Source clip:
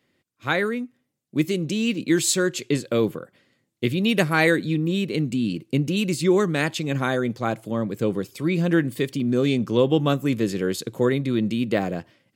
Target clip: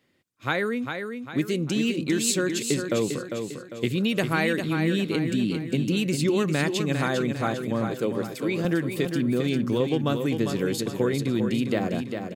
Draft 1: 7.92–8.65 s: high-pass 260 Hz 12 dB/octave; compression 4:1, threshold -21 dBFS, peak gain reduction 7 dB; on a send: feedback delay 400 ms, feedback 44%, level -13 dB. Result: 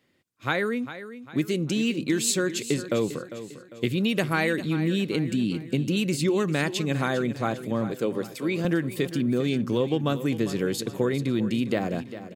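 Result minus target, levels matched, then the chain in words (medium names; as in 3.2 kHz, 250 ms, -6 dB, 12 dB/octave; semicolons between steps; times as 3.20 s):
echo-to-direct -6.5 dB
7.92–8.65 s: high-pass 260 Hz 12 dB/octave; compression 4:1, threshold -21 dBFS, peak gain reduction 7 dB; on a send: feedback delay 400 ms, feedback 44%, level -6.5 dB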